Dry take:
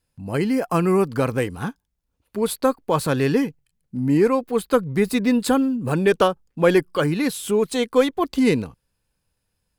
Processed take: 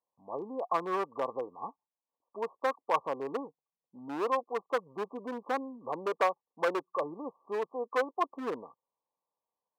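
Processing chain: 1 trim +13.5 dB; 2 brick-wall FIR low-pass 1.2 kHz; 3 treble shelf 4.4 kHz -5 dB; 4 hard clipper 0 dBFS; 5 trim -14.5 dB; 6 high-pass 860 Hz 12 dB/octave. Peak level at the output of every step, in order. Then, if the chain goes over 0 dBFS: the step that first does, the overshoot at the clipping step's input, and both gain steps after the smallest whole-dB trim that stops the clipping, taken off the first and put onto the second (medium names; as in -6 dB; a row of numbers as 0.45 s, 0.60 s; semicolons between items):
+9.5 dBFS, +8.0 dBFS, +8.0 dBFS, 0.0 dBFS, -14.5 dBFS, -15.0 dBFS; step 1, 8.0 dB; step 1 +5.5 dB, step 5 -6.5 dB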